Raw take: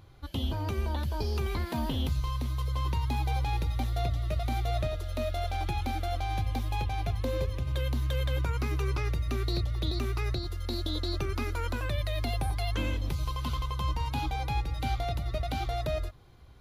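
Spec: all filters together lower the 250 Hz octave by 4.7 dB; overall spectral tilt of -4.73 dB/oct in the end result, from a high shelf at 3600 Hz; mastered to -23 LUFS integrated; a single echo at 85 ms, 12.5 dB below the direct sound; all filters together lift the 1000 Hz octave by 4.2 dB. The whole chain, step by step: bell 250 Hz -7 dB; bell 1000 Hz +5.5 dB; high shelf 3600 Hz +9 dB; echo 85 ms -12.5 dB; gain +8 dB

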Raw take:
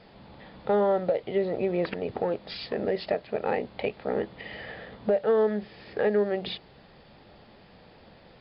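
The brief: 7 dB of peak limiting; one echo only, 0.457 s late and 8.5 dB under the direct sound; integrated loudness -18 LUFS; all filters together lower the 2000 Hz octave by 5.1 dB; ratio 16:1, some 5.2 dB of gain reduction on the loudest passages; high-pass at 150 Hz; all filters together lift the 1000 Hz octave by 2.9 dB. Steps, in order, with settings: HPF 150 Hz; bell 1000 Hz +5.5 dB; bell 2000 Hz -8 dB; compressor 16:1, threshold -23 dBFS; limiter -21.5 dBFS; echo 0.457 s -8.5 dB; gain +15 dB

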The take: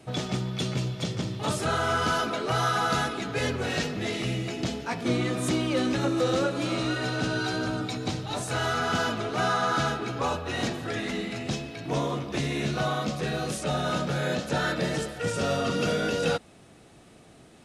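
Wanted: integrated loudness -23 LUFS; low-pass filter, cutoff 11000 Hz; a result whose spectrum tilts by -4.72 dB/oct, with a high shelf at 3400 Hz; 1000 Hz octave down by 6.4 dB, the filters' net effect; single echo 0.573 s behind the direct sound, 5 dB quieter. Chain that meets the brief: LPF 11000 Hz; bell 1000 Hz -9 dB; high shelf 3400 Hz -3.5 dB; echo 0.573 s -5 dB; gain +6.5 dB

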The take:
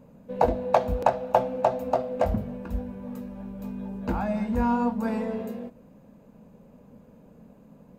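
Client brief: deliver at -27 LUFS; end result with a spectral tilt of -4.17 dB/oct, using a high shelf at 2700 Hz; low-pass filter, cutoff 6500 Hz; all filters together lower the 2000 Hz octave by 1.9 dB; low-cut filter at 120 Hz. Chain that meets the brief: HPF 120 Hz; LPF 6500 Hz; bell 2000 Hz -5 dB; high shelf 2700 Hz +5.5 dB; gain +1 dB

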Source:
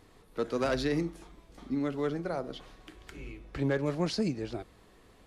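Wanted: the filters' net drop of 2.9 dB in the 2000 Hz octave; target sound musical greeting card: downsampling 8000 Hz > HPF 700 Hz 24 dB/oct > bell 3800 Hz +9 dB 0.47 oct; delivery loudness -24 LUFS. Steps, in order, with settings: bell 2000 Hz -4.5 dB; downsampling 8000 Hz; HPF 700 Hz 24 dB/oct; bell 3800 Hz +9 dB 0.47 oct; gain +19 dB

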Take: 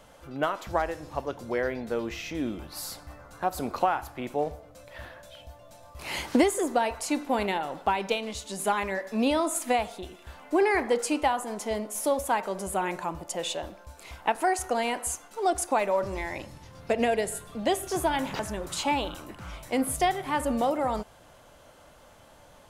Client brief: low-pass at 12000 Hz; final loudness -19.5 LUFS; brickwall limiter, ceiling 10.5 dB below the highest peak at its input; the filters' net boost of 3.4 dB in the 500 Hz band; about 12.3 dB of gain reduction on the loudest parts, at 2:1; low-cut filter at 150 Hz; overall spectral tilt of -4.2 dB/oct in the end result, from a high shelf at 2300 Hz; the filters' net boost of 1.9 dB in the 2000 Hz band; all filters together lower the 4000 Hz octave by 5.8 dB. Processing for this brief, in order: HPF 150 Hz; LPF 12000 Hz; bell 500 Hz +4.5 dB; bell 2000 Hz +7 dB; high shelf 2300 Hz -8.5 dB; bell 4000 Hz -3.5 dB; compressor 2:1, threshold -39 dBFS; gain +19.5 dB; limiter -8 dBFS

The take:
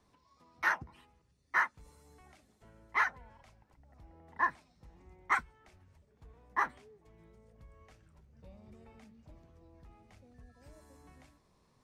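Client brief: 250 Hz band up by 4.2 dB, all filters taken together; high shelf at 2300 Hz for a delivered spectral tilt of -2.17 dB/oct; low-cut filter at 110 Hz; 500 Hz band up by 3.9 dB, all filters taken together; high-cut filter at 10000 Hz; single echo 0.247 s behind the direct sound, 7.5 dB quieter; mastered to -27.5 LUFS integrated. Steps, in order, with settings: HPF 110 Hz; LPF 10000 Hz; bell 250 Hz +4.5 dB; bell 500 Hz +3.5 dB; high shelf 2300 Hz +8 dB; echo 0.247 s -7.5 dB; gain +4 dB

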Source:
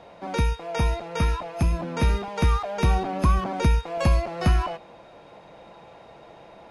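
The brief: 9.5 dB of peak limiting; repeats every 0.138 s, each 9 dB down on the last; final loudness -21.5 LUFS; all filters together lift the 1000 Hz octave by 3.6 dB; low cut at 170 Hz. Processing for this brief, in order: HPF 170 Hz; bell 1000 Hz +4.5 dB; limiter -20 dBFS; feedback echo 0.138 s, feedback 35%, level -9 dB; gain +7.5 dB

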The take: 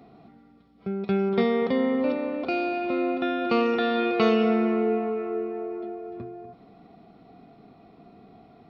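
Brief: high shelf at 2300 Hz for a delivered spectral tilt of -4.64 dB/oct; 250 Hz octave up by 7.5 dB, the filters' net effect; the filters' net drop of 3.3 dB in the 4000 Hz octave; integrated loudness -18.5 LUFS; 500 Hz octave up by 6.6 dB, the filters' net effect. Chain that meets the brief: bell 250 Hz +7.5 dB; bell 500 Hz +5.5 dB; high shelf 2300 Hz +3.5 dB; bell 4000 Hz -8 dB; gain +0.5 dB

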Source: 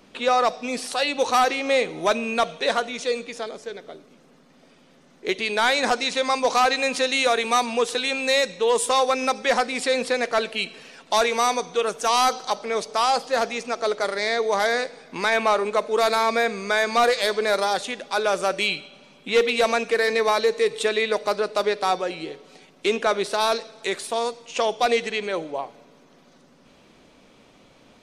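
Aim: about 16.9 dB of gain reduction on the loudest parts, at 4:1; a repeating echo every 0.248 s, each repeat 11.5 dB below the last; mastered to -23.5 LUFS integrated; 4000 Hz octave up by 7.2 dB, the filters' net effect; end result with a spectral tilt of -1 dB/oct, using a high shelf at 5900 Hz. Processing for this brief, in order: bell 4000 Hz +6 dB; high shelf 5900 Hz +6.5 dB; compressor 4:1, threshold -35 dBFS; feedback echo 0.248 s, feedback 27%, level -11.5 dB; gain +11 dB

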